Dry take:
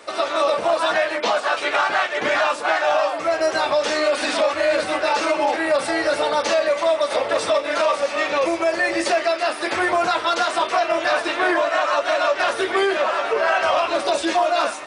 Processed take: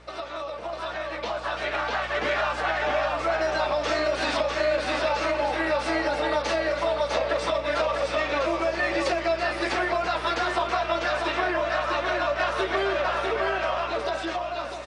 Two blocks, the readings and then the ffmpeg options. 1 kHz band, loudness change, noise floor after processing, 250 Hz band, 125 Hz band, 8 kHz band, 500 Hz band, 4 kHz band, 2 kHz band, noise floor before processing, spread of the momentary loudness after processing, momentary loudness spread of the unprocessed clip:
-6.0 dB, -6.0 dB, -34 dBFS, -5.0 dB, n/a, -10.0 dB, -6.0 dB, -6.0 dB, -5.5 dB, -30 dBFS, 5 LU, 2 LU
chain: -filter_complex "[0:a]highpass=130,lowpass=5.6k,acompressor=threshold=-23dB:ratio=6,aeval=exprs='val(0)+0.00631*(sin(2*PI*60*n/s)+sin(2*PI*2*60*n/s)/2+sin(2*PI*3*60*n/s)/3+sin(2*PI*4*60*n/s)/4+sin(2*PI*5*60*n/s)/5)':c=same,asplit=2[a][b];[b]aecho=0:1:649:0.631[c];[a][c]amix=inputs=2:normalize=0,dynaudnorm=f=110:g=31:m=8dB,volume=-8dB"

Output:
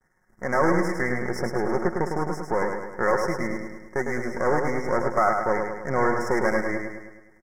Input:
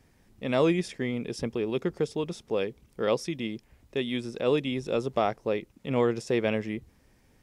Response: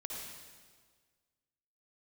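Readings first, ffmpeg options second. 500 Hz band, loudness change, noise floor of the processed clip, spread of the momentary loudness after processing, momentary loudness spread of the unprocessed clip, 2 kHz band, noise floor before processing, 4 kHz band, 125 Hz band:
+3.0 dB, +4.0 dB, -61 dBFS, 8 LU, 9 LU, +9.5 dB, -63 dBFS, -7.5 dB, +2.0 dB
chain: -filter_complex "[0:a]aeval=exprs='if(lt(val(0),0),0.251*val(0),val(0))':c=same,agate=range=-33dB:threshold=-55dB:ratio=3:detection=peak,equalizer=f=1.5k:t=o:w=2.4:g=13,aecho=1:1:5.5:0.39,asplit=2[a][b];[b]acompressor=threshold=-30dB:ratio=6,volume=-2dB[c];[a][c]amix=inputs=2:normalize=0,asoftclip=type=tanh:threshold=-11.5dB,aeval=exprs='0.266*(cos(1*acos(clip(val(0)/0.266,-1,1)))-cos(1*PI/2))+0.0075*(cos(7*acos(clip(val(0)/0.266,-1,1)))-cos(7*PI/2))':c=same,asuperstop=centerf=3300:order=20:qfactor=1.1,asplit=2[d][e];[e]aecho=0:1:105|210|315|420|525|630|735:0.562|0.304|0.164|0.0885|0.0478|0.0258|0.0139[f];[d][f]amix=inputs=2:normalize=0"

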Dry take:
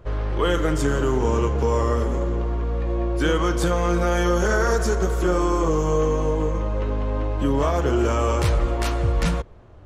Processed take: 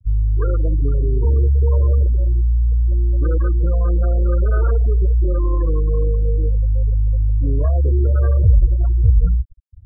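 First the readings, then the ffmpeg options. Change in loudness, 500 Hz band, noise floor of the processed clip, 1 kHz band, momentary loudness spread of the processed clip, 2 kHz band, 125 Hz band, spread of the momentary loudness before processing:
+4.5 dB, -6.0 dB, -23 dBFS, -12.5 dB, 4 LU, -13.5 dB, +8.5 dB, 5 LU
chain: -af "lowshelf=f=130:t=q:w=1.5:g=11,acrusher=samples=16:mix=1:aa=0.000001,afftfilt=real='re*gte(hypot(re,im),0.251)':imag='im*gte(hypot(re,im),0.251)':win_size=1024:overlap=0.75,volume=-3.5dB"

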